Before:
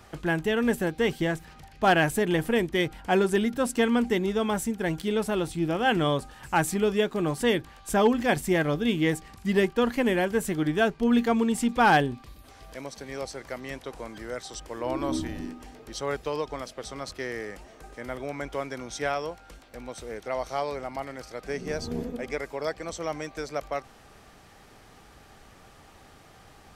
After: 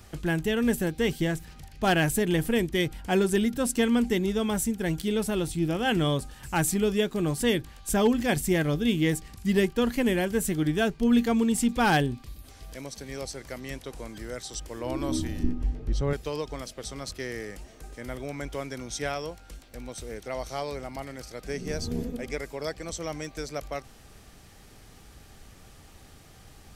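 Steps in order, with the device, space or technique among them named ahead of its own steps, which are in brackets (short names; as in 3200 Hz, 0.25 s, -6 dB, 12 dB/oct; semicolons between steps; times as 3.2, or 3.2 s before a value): smiley-face EQ (low shelf 130 Hz +7 dB; bell 970 Hz -5.5 dB 2 oct; high shelf 5500 Hz +6.5 dB); 15.43–16.13 RIAA curve playback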